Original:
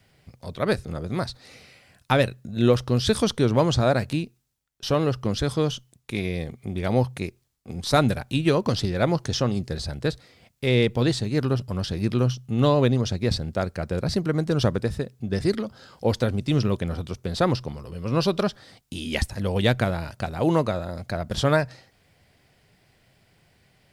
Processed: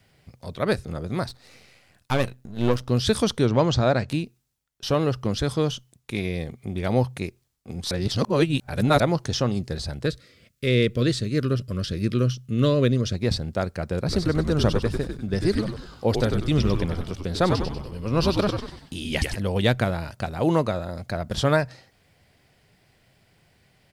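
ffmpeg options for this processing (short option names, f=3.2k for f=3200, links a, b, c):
-filter_complex "[0:a]asettb=1/sr,asplit=3[a][b][c];[a]atrim=end=1.284[d];[b]atrim=start=1.28:end=2.89,asetpts=PTS-STARTPTS,afade=t=in:d=0.004:c=qsin,afade=t=out:st=1.606:d=0.004:c=qsin,aeval=exprs='if(lt(val(0),0),0.251*val(0),val(0))':c=same[e];[c]atrim=start=2.886[f];[d][e]acrossfade=d=0.004:c1=hsin:c2=qsin[g];[g][f]acrossfade=d=0.004:c1=qsin:c2=hsin,asettb=1/sr,asplit=3[h][i][j];[h]atrim=end=3.474[k];[i]atrim=start=3.47:end=4.09,asetpts=PTS-STARTPTS,afade=t=in:d=0.004:c=qsin,afade=t=out:st=0.616:d=0.004:c=qsin,lowpass=f=6.9k:w=0.5412,lowpass=f=6.9k:w=1.3066[l];[j]atrim=start=4.086[m];[k][l]acrossfade=d=0.004:c1=hsin:c2=qsin[n];[n][m]acrossfade=d=0.004:c1=qsin:c2=hsin,asettb=1/sr,asplit=3[o][p][q];[o]atrim=end=10.064[r];[p]atrim=start=10.06:end=13.14,asetpts=PTS-STARTPTS,afade=t=in:d=0.004:c=qsin,afade=t=out:st=3.076:d=0.004:c=qsin,asuperstop=centerf=830:order=4:qfactor=1.6[s];[q]atrim=start=13.136[t];[r][s]acrossfade=d=0.004:c1=hsin:c2=qsin[u];[u][t]acrossfade=d=0.004:c1=qsin:c2=hsin,asplit=3[v][w][x];[v]afade=t=out:st=14.08:d=0.02[y];[w]asplit=6[z][aa][ab][ac][ad][ae];[aa]adelay=96,afreqshift=-88,volume=-5dB[af];[ab]adelay=192,afreqshift=-176,volume=-12.3dB[ag];[ac]adelay=288,afreqshift=-264,volume=-19.7dB[ah];[ad]adelay=384,afreqshift=-352,volume=-27dB[ai];[ae]adelay=480,afreqshift=-440,volume=-34.3dB[aj];[z][af][ag][ah][ai][aj]amix=inputs=6:normalize=0,afade=t=in:st=14.08:d=0.02,afade=t=out:st=19.35:d=0.02[ak];[x]afade=t=in:st=19.35:d=0.02[al];[y][ak][al]amix=inputs=3:normalize=0,asplit=3[am][an][ao];[am]atrim=end=7.912[ap];[an]atrim=start=7.908:end=9.002,asetpts=PTS-STARTPTS,areverse[aq];[ao]atrim=start=8.998[ar];[ap][aq]acrossfade=d=0.004:c1=hsin:c2=hsin[as];[as][ar]acrossfade=d=0.004:c1=hsin:c2=hsin"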